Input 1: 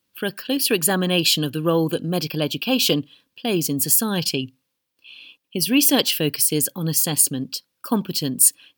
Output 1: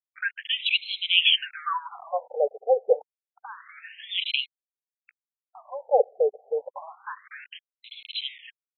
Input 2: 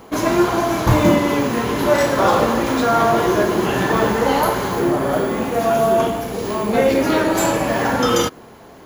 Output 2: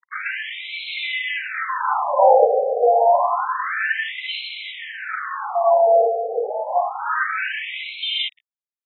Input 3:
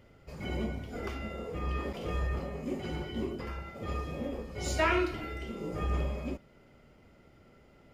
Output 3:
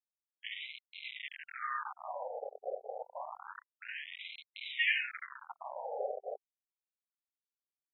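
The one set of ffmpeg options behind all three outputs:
-af "aecho=1:1:3.9:0.31,aeval=exprs='val(0)*gte(abs(val(0)),0.0251)':c=same,afftfilt=real='re*between(b*sr/1024,560*pow(3000/560,0.5+0.5*sin(2*PI*0.28*pts/sr))/1.41,560*pow(3000/560,0.5+0.5*sin(2*PI*0.28*pts/sr))*1.41)':imag='im*between(b*sr/1024,560*pow(3000/560,0.5+0.5*sin(2*PI*0.28*pts/sr))/1.41,560*pow(3000/560,0.5+0.5*sin(2*PI*0.28*pts/sr))*1.41)':win_size=1024:overlap=0.75,volume=4dB"

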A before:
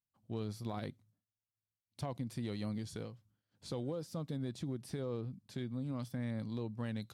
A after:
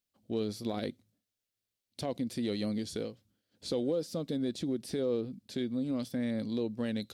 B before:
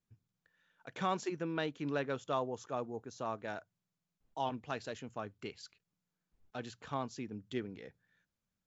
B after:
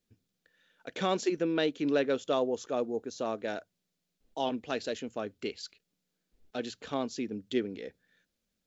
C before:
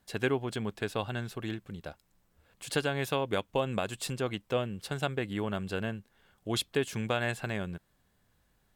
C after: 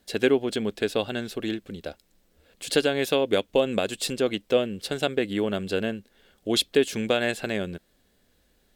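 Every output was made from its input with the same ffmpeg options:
-af "equalizer=f=125:t=o:w=1:g=-11,equalizer=f=250:t=o:w=1:g=4,equalizer=f=500:t=o:w=1:g=5,equalizer=f=1k:t=o:w=1:g=-8,equalizer=f=4k:t=o:w=1:g=4,volume=6dB"

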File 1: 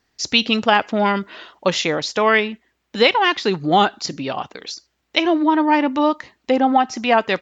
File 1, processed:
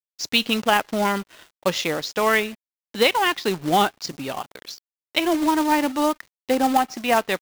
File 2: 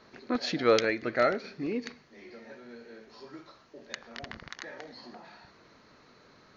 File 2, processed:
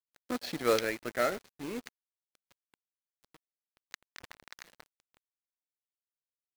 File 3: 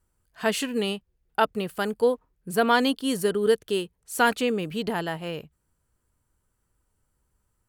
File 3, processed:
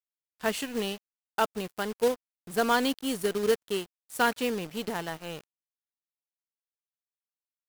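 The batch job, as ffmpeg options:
-filter_complex "[0:a]acrusher=bits=3:mode=log:mix=0:aa=0.000001,asplit=2[a][b];[b]adelay=120,highpass=300,lowpass=3.4k,asoftclip=type=hard:threshold=-11dB,volume=-30dB[c];[a][c]amix=inputs=2:normalize=0,aeval=exprs='sgn(val(0))*max(abs(val(0))-0.0112,0)':c=same,volume=-3.5dB"

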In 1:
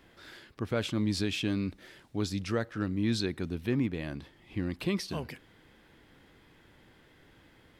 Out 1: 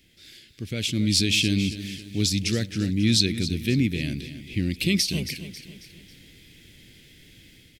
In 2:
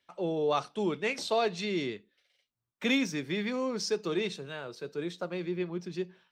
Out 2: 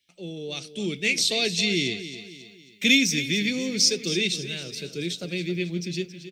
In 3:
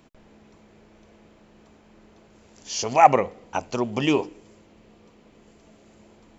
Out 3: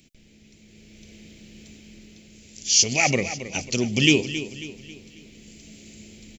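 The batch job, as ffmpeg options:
-filter_complex "[0:a]firequalizer=gain_entry='entry(170,0);entry(1000,-25);entry(2200,3);entry(5600,8)':delay=0.05:min_phase=1,dynaudnorm=f=580:g=3:m=9dB,asplit=2[a][b];[b]aecho=0:1:272|544|816|1088:0.237|0.104|0.0459|0.0202[c];[a][c]amix=inputs=2:normalize=0"

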